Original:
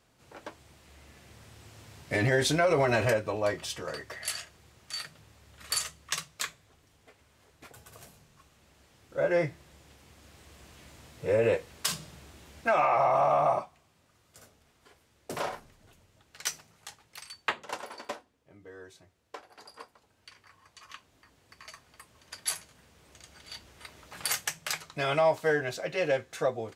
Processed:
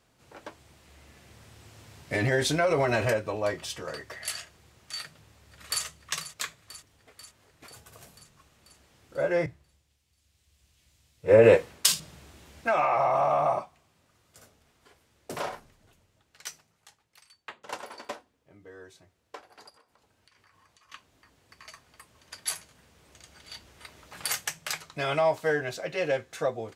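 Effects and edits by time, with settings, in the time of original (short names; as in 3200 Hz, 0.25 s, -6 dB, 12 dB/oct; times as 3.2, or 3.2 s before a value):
5.02–5.84 echo throw 0.49 s, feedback 70%, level -13 dB
9.46–12 three-band expander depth 100%
15.46–17.64 fade out quadratic, to -13 dB
19.69–20.92 compressor 16:1, threshold -57 dBFS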